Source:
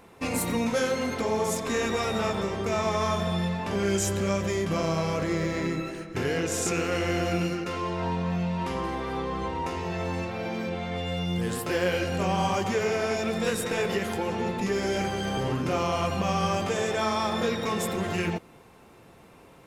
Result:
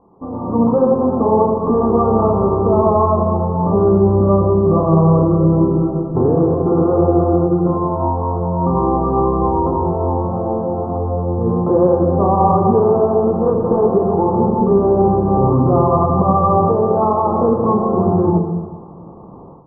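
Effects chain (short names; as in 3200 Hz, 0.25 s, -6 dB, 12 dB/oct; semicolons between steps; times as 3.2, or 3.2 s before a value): rippled Chebyshev low-pass 1200 Hz, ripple 3 dB; on a send at -6 dB: bell 150 Hz +14.5 dB 0.62 oct + reverb RT60 1.4 s, pre-delay 33 ms; on the sum: AGC gain up to 13.5 dB; gain +1.5 dB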